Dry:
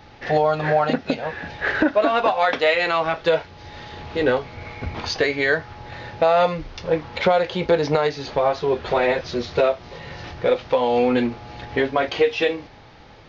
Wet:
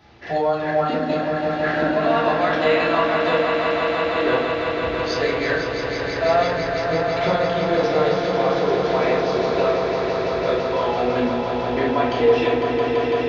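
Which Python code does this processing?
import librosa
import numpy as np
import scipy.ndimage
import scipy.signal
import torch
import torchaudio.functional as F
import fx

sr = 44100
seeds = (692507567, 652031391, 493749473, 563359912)

y = scipy.signal.sosfilt(scipy.signal.butter(2, 59.0, 'highpass', fs=sr, output='sos'), x)
y = fx.echo_swell(y, sr, ms=167, loudest=5, wet_db=-7.5)
y = fx.room_shoebox(y, sr, seeds[0], volume_m3=470.0, walls='furnished', distance_m=3.0)
y = y * librosa.db_to_amplitude(-7.5)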